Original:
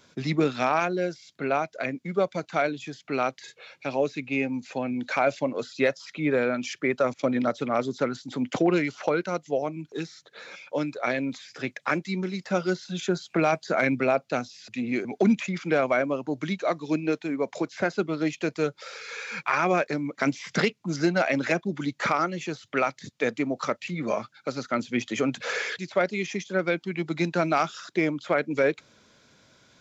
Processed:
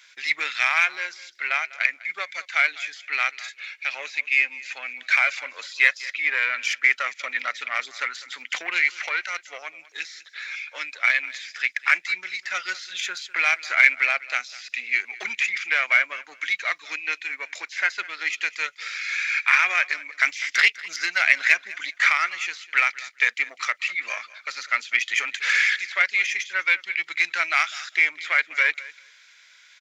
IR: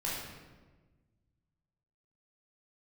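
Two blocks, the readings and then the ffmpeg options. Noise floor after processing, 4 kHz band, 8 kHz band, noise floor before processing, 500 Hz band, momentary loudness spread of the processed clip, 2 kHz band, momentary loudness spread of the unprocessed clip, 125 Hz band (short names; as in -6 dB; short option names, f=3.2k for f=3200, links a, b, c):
-53 dBFS, +8.5 dB, n/a, -64 dBFS, -17.5 dB, 13 LU, +11.5 dB, 8 LU, under -35 dB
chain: -af "aeval=exprs='0.316*(cos(1*acos(clip(val(0)/0.316,-1,1)))-cos(1*PI/2))+0.0158*(cos(4*acos(clip(val(0)/0.316,-1,1)))-cos(4*PI/2))+0.00708*(cos(8*acos(clip(val(0)/0.316,-1,1)))-cos(8*PI/2))':c=same,highpass=f=2k:t=q:w=3.1,aecho=1:1:200|400:0.112|0.0168,volume=4.5dB"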